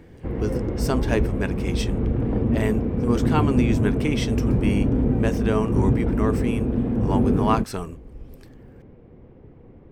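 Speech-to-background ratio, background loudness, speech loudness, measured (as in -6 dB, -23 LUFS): -4.5 dB, -23.5 LUFS, -28.0 LUFS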